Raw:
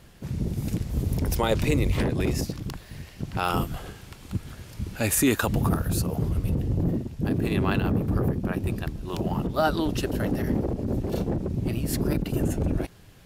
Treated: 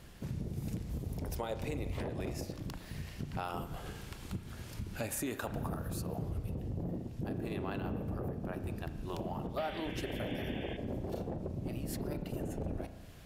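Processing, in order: dynamic EQ 670 Hz, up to +7 dB, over -41 dBFS, Q 1.3; compressor 4:1, threshold -35 dBFS, peak gain reduction 18.5 dB; painted sound noise, 9.57–10.77, 1500–3600 Hz -47 dBFS; spring tank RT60 1.3 s, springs 34 ms, chirp 25 ms, DRR 9.5 dB; gain -2.5 dB

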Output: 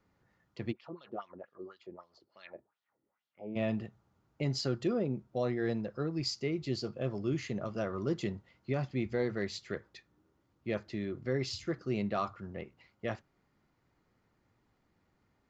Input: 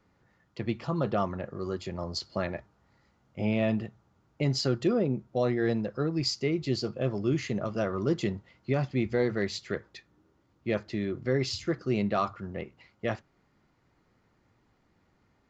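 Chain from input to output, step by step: 0.71–3.55 wah 5.2 Hz -> 1.8 Hz 300–3800 Hz, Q 3; gain -5.5 dB

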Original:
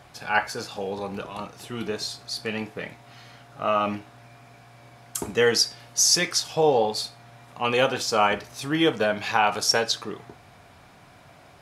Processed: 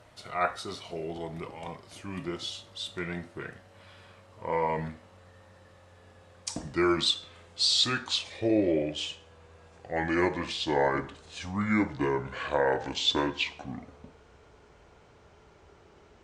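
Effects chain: speed glide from 85% -> 58%; gain -5.5 dB

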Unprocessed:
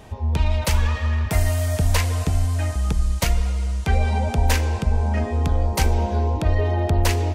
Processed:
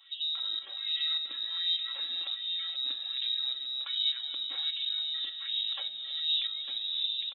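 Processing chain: tape stop at the end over 0.88 s; HPF 120 Hz 6 dB/oct; low shelf 280 Hz +11.5 dB; comb 3.7 ms, depth 95%; in parallel at -1 dB: negative-ratio compressor -17 dBFS; on the sum: limiter -8.5 dBFS, peak gain reduction 11 dB; tremolo saw up 1.7 Hz, depth 70%; resonator 190 Hz, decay 1.3 s, mix 80%; inverted band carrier 3800 Hz; on a send: echo 0.903 s -6 dB; on the sum: LFO high-pass sine 1.3 Hz 260–2900 Hz; gain -7 dB

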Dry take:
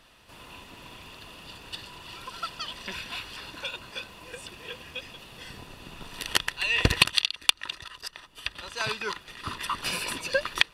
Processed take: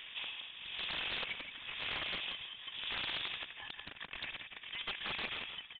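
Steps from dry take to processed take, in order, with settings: median filter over 15 samples; HPF 240 Hz 6 dB/oct; tilt -1.5 dB/oct; compressor 16:1, threshold -45 dBFS, peak gain reduction 28 dB; tremolo 0.53 Hz, depth 80%; granular stretch 0.54×, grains 44 ms; wrapped overs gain 46 dB; echo 0.171 s -8 dB; inverted band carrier 3600 Hz; Doppler distortion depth 0.28 ms; gain +14.5 dB

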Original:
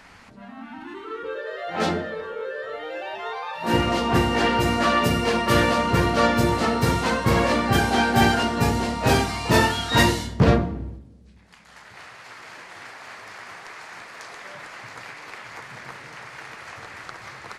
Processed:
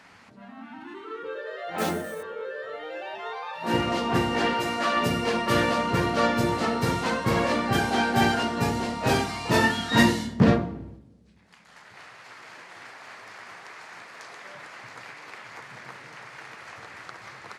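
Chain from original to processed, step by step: HPF 100 Hz 12 dB/oct; high shelf 10000 Hz -4 dB; 1.78–2.23 sample-rate reducer 10000 Hz, jitter 0%; 4.53–4.97 low shelf 220 Hz -12 dB; 9.63–10.53 small resonant body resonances 220/1800 Hz, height 9 dB; gain -3.5 dB

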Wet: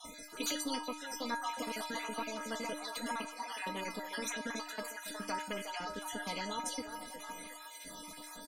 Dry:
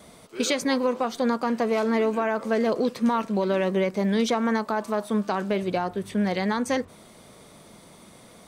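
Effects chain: random spectral dropouts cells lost 48%; comb 4.2 ms, depth 92%; flange 1.3 Hz, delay 2.7 ms, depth 4.1 ms, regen -44%; metallic resonator 300 Hz, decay 0.37 s, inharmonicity 0.008; on a send: delay with a stepping band-pass 0.362 s, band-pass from 690 Hz, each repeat 0.7 oct, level -10.5 dB; on the sum: spectral compressor 2:1; gain +6.5 dB

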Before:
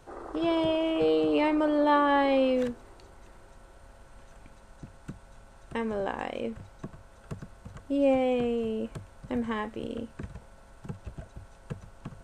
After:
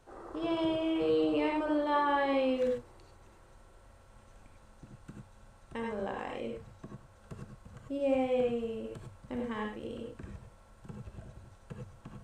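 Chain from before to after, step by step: non-linear reverb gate 0.12 s rising, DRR 1 dB; gain -7.5 dB

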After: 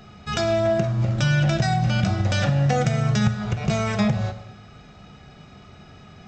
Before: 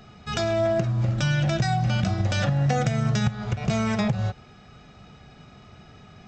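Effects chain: plate-style reverb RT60 1 s, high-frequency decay 0.95×, DRR 9.5 dB; gain +2 dB

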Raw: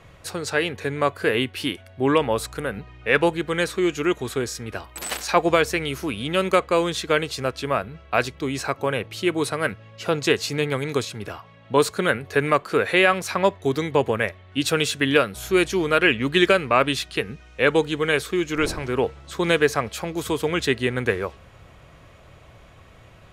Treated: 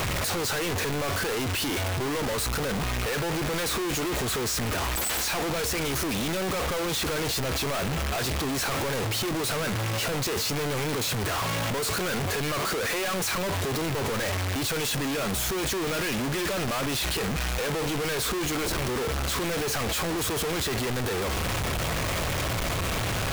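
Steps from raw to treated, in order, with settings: infinite clipping; gain -4.5 dB

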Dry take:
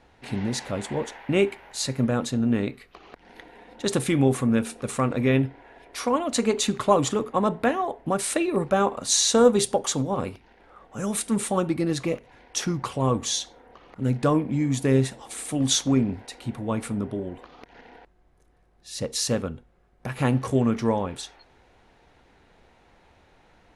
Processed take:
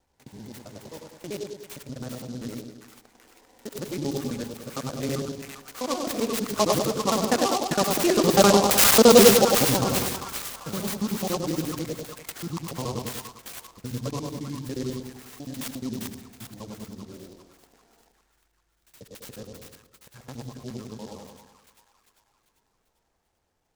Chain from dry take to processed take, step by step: local time reversal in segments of 68 ms; Doppler pass-by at 8.74, 14 m/s, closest 12 m; on a send: split-band echo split 1100 Hz, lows 99 ms, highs 0.395 s, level -3.5 dB; on the sum: noise-modulated delay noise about 4700 Hz, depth 0.078 ms; gain +5 dB

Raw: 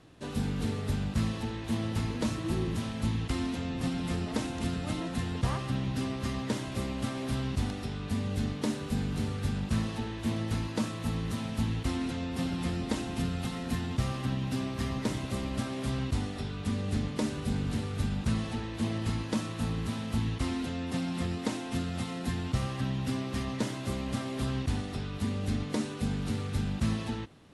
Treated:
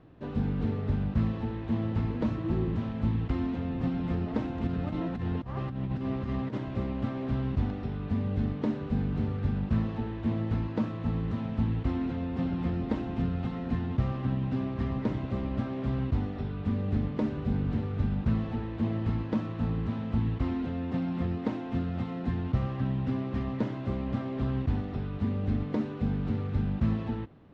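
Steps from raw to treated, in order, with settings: 4.67–6.58 negative-ratio compressor -33 dBFS, ratio -0.5; tape spacing loss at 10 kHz 41 dB; gain +3 dB

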